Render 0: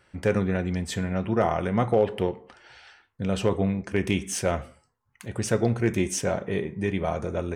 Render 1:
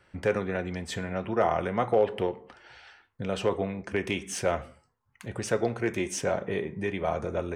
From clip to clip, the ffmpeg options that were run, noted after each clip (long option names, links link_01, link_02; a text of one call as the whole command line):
ffmpeg -i in.wav -filter_complex "[0:a]highshelf=frequency=5600:gain=-7.5,acrossover=split=350|1400[link_01][link_02][link_03];[link_01]acompressor=threshold=-34dB:ratio=6[link_04];[link_04][link_02][link_03]amix=inputs=3:normalize=0" out.wav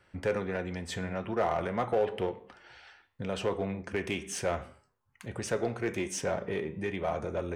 ffmpeg -i in.wav -filter_complex "[0:a]flanger=delay=9.8:depth=3.3:regen=88:speed=0.83:shape=triangular,asplit=2[link_01][link_02];[link_02]asoftclip=type=hard:threshold=-31dB,volume=-4dB[link_03];[link_01][link_03]amix=inputs=2:normalize=0,volume=-2dB" out.wav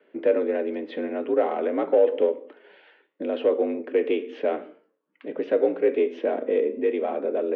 ffmpeg -i in.wav -af "lowshelf=frequency=570:width_type=q:width=1.5:gain=10.5,highpass=frequency=220:width_type=q:width=0.5412,highpass=frequency=220:width_type=q:width=1.307,lowpass=frequency=3400:width_type=q:width=0.5176,lowpass=frequency=3400:width_type=q:width=0.7071,lowpass=frequency=3400:width_type=q:width=1.932,afreqshift=60" out.wav